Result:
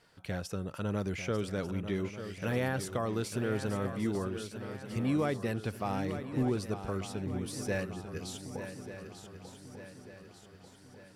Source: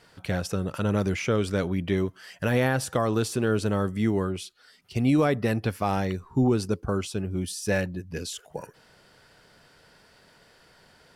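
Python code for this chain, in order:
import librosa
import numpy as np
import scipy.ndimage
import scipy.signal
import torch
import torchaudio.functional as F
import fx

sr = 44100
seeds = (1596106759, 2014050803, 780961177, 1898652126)

y = fx.echo_swing(x, sr, ms=1192, ratio=3, feedback_pct=48, wet_db=-10.0)
y = y * librosa.db_to_amplitude(-8.5)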